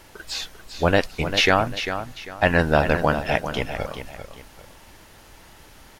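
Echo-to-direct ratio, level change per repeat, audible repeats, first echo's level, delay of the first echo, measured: −9.0 dB, −10.0 dB, 2, −9.5 dB, 396 ms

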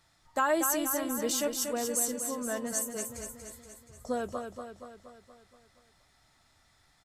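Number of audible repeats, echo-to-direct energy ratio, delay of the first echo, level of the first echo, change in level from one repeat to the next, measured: 6, −5.0 dB, 237 ms, −6.5 dB, −5.0 dB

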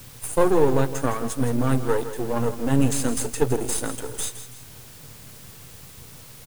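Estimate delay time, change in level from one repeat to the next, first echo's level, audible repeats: 164 ms, −8.5 dB, −12.0 dB, 2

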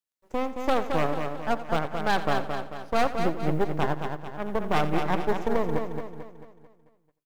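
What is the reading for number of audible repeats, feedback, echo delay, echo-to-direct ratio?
11, repeats not evenly spaced, 87 ms, −4.5 dB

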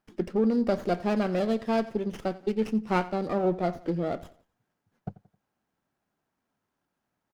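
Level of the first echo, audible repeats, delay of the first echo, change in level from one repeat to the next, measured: −18.5 dB, 3, 88 ms, −8.0 dB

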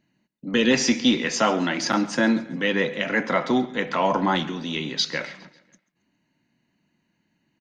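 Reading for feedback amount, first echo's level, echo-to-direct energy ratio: 50%, −20.0 dB, −19.0 dB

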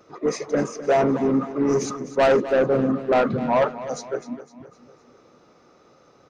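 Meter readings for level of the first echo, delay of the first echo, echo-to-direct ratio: −14.5 dB, 254 ms, −13.5 dB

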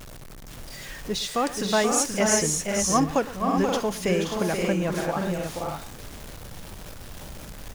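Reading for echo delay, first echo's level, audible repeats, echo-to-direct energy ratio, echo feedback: 113 ms, −18.5 dB, 4, −1.0 dB, repeats not evenly spaced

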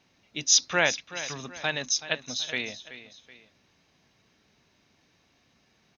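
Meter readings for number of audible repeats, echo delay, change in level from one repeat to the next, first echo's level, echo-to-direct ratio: 2, 378 ms, −7.5 dB, −14.0 dB, −13.5 dB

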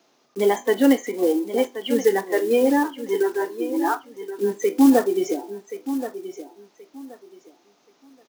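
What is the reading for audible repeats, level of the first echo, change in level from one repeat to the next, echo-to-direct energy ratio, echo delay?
2, −12.0 dB, −13.0 dB, −12.0 dB, 1,077 ms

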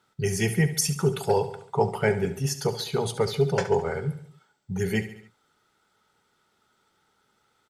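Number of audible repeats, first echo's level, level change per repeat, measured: 4, −13.0 dB, −5.5 dB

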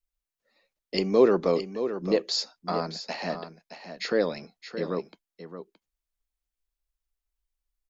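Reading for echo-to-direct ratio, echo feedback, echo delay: −10.5 dB, repeats not evenly spaced, 620 ms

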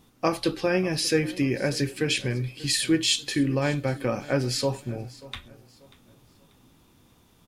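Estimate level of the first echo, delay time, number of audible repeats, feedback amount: −20.0 dB, 588 ms, 2, 33%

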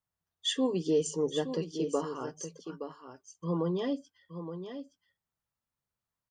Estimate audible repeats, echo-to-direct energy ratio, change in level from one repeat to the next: 1, −9.5 dB, repeats not evenly spaced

